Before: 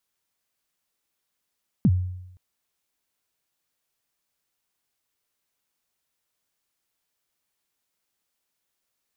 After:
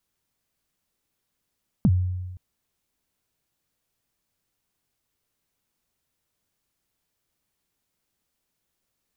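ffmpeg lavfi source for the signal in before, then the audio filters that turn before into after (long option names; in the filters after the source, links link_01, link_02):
-f lavfi -i "aevalsrc='0.237*pow(10,-3*t/0.86)*sin(2*PI*(250*0.049/log(91/250)*(exp(log(91/250)*min(t,0.049)/0.049)-1)+91*max(t-0.049,0)))':duration=0.52:sample_rate=44100"
-af "lowshelf=frequency=340:gain=11.5,acompressor=threshold=-26dB:ratio=2"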